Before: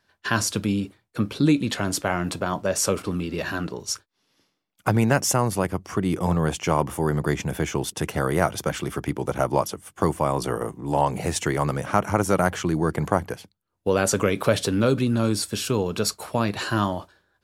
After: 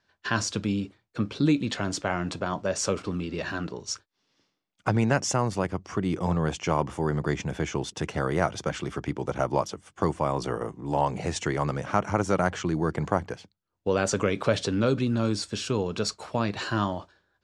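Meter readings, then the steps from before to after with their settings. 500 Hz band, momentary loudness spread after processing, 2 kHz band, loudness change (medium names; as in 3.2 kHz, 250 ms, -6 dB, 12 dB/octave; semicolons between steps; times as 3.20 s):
-3.5 dB, 8 LU, -3.5 dB, -3.5 dB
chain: low-pass 7.3 kHz 24 dB/octave; trim -3.5 dB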